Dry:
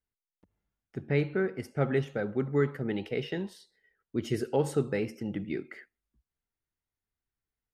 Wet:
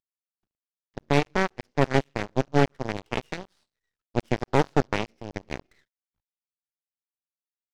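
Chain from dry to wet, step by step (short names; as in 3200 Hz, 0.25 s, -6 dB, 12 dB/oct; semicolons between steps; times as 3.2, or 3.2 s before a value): CVSD 32 kbps; added harmonics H 2 -19 dB, 6 -39 dB, 7 -16 dB, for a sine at -14 dBFS; half-wave rectifier; gain +8 dB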